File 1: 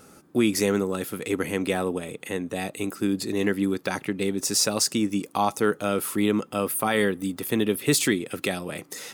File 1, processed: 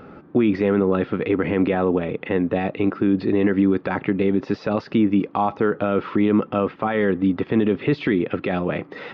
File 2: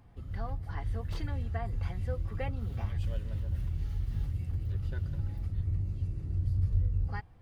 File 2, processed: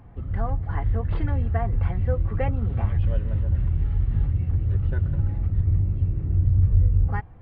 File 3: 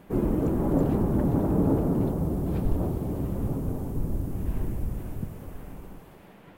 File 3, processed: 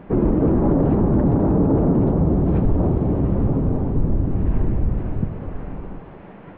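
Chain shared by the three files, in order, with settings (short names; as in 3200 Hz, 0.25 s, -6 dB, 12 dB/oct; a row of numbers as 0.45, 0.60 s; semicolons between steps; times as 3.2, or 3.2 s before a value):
limiter -19.5 dBFS; Gaussian blur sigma 3.4 samples; normalise peaks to -9 dBFS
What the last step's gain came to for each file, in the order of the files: +10.5, +10.5, +10.5 dB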